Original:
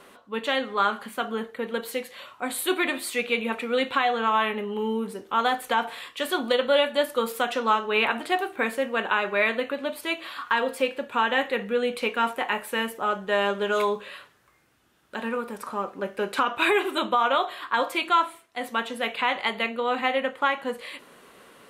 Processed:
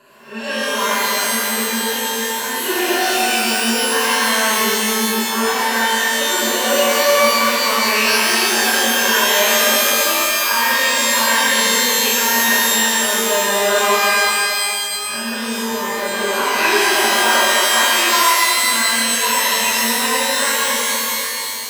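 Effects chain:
peak hold with a rise ahead of every peak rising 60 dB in 0.44 s
EQ curve with evenly spaced ripples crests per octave 1.4, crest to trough 15 dB
reverb with rising layers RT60 2.9 s, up +12 semitones, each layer −2 dB, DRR −9 dB
level −7.5 dB

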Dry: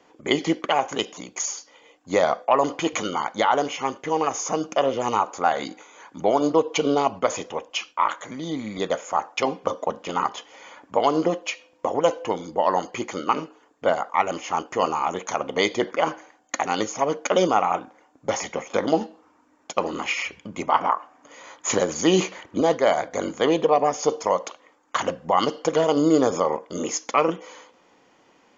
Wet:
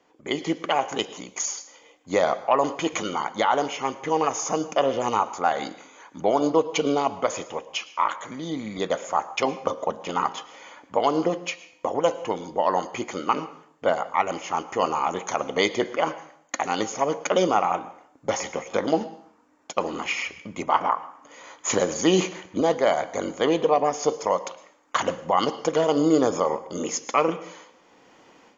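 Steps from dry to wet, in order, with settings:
automatic gain control
dense smooth reverb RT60 0.57 s, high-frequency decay 0.95×, pre-delay 95 ms, DRR 16 dB
level −6.5 dB

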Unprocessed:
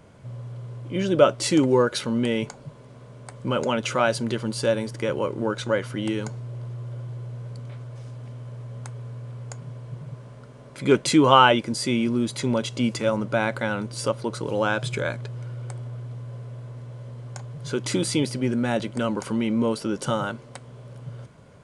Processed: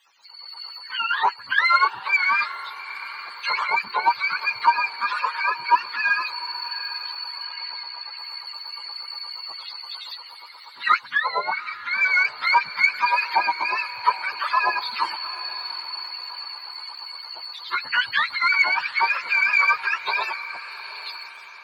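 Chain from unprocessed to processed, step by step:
frequency axis turned over on the octave scale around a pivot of 730 Hz
automatic gain control gain up to 12 dB
auto-filter high-pass sine 8.5 Hz 920–2,300 Hz
in parallel at −9 dB: soft clipping −7 dBFS, distortion −15 dB
0:07.43–0:08.18: on the sum: loudspeaker in its box 130–5,500 Hz, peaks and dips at 680 Hz +4 dB, 2,200 Hz +5 dB, 3,600 Hz +4 dB
on a send: feedback delay with all-pass diffusion 787 ms, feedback 44%, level −14.5 dB
on the sum: level −8.5 dB

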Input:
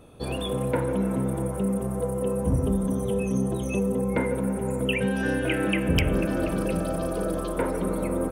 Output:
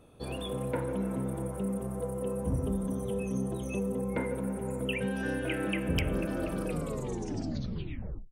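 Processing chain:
turntable brake at the end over 1.68 s
level −7 dB

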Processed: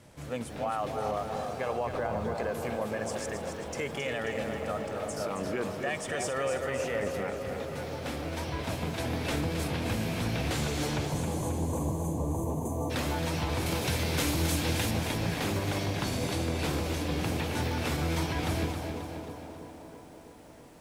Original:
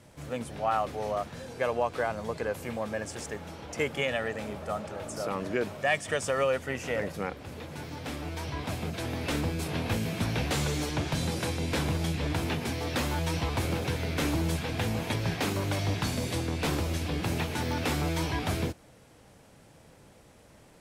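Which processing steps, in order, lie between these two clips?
0:01.86–0:02.35: spectral tilt −2 dB per octave
delay with a band-pass on its return 327 ms, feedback 71%, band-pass 510 Hz, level −8.5 dB
brickwall limiter −22.5 dBFS, peak gain reduction 8.5 dB
0:11.06–0:12.91: gain on a spectral selection 1,200–6,000 Hz −29 dB
0:13.66–0:14.91: high-shelf EQ 3,400 Hz +10 dB
feedback echo at a low word length 268 ms, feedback 55%, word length 10 bits, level −7 dB

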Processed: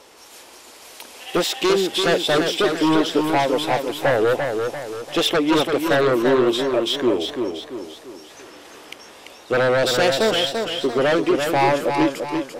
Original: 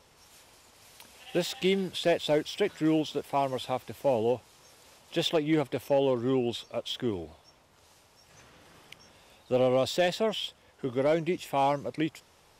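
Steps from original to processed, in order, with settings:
low shelf with overshoot 210 Hz −12.5 dB, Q 1.5
sine wavefolder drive 9 dB, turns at −13 dBFS
feedback echo with a swinging delay time 341 ms, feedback 44%, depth 60 cents, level −5.5 dB
level −1 dB

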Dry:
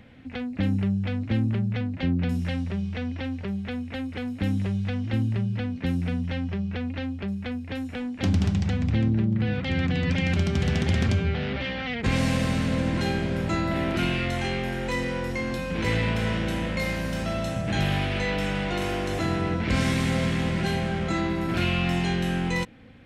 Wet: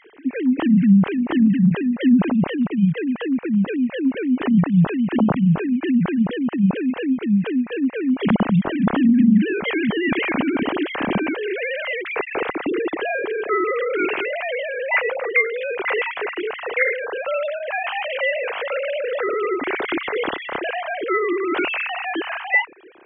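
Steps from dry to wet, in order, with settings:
three sine waves on the formant tracks
level +5.5 dB

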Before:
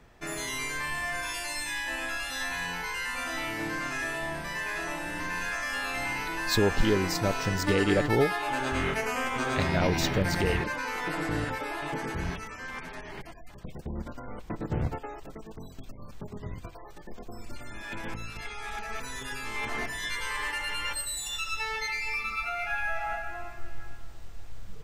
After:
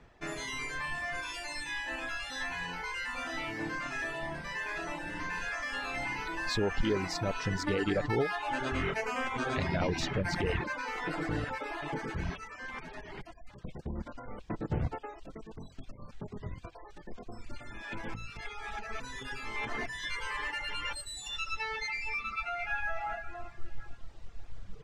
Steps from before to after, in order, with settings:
reverb reduction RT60 0.9 s
brickwall limiter −19.5 dBFS, peak gain reduction 6 dB
high-frequency loss of the air 73 metres
level −1 dB

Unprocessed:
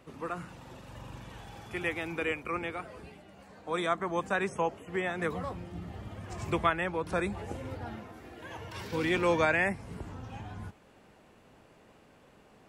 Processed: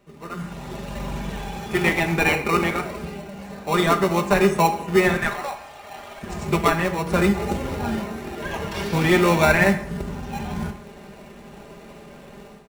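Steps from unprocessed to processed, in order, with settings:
comb filter 5 ms, depth 70%
automatic gain control gain up to 16.5 dB
0:05.17–0:06.23: Butterworth high-pass 600 Hz 96 dB per octave
in parallel at −4 dB: decimation without filtering 27×
on the sum: dense smooth reverb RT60 0.7 s, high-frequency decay 0.75×, DRR 7 dB
level −5.5 dB

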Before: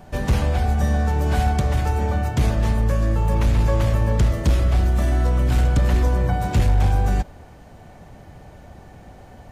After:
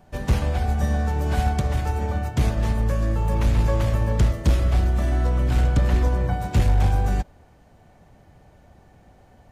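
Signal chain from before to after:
0:04.84–0:06.31: high-shelf EQ 6,700 Hz −5 dB
expander for the loud parts 1.5 to 1, over −31 dBFS

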